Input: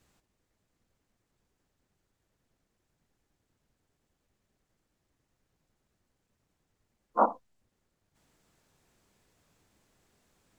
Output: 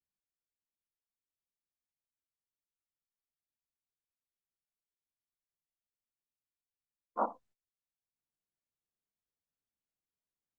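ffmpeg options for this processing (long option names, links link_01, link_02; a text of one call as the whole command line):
ffmpeg -i in.wav -af "agate=range=-24dB:threshold=-55dB:ratio=16:detection=peak,volume=-8.5dB" out.wav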